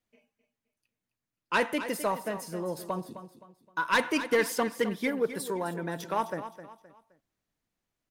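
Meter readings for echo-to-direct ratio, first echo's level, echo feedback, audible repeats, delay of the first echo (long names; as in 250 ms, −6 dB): −11.5 dB, −12.0 dB, 34%, 3, 260 ms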